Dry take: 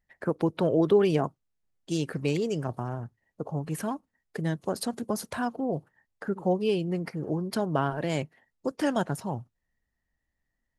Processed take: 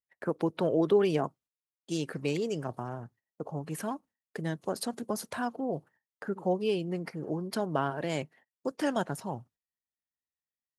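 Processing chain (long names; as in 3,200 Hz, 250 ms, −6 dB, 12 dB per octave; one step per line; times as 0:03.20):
noise gate −53 dBFS, range −19 dB
high-pass filter 180 Hz 6 dB per octave
level −2 dB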